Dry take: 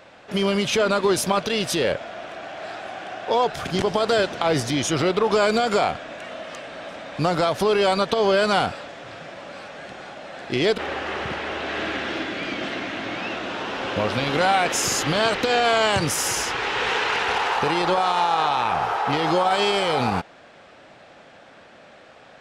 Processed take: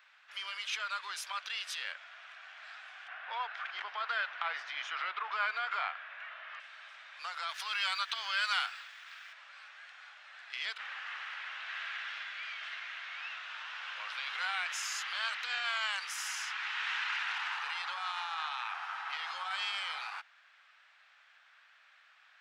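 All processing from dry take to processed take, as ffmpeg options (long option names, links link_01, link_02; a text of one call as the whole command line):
ffmpeg -i in.wav -filter_complex "[0:a]asettb=1/sr,asplit=3[link_01][link_02][link_03];[link_01]atrim=end=3.084[link_04];[link_02]atrim=start=3.08:end=6.6,asetpts=PTS-STARTPTS,afade=type=in:duration=0.004:curve=qsin,afade=type=out:start_time=3.516:duration=0.004:curve=qsin,lowpass=2200,acontrast=56[link_05];[link_03]atrim=start=6.596[link_06];[link_04][link_05]acrossfade=duration=0.004:curve1=hsin:curve2=qsin[link_07];[link_07][link_06]acrossfade=duration=0.004:curve1=qsin:curve2=hsin,asettb=1/sr,asplit=3[link_08][link_09][link_10];[link_08]atrim=end=7.494[link_11];[link_09]atrim=start=7.49:end=9.33,asetpts=PTS-STARTPTS,afade=type=in:duration=0.004:curve=qsin,afade=type=out:start_time=1.836:duration=0.004:curve=qsin,highpass=frequency=1400:poles=1,acontrast=74,aeval=exprs='sgn(val(0))*max(abs(val(0))-0.00398,0)':channel_layout=same[link_12];[link_10]atrim=start=9.326[link_13];[link_11][link_12]acrossfade=duration=0.004:curve1=hsin:curve2=qsin[link_14];[link_14][link_13]acrossfade=duration=0.004:curve1=qsin:curve2=hsin,highpass=frequency=1300:width=0.5412,highpass=frequency=1300:width=1.3066,equalizer=frequency=12000:width_type=o:width=1.8:gain=-12,volume=-8dB" out.wav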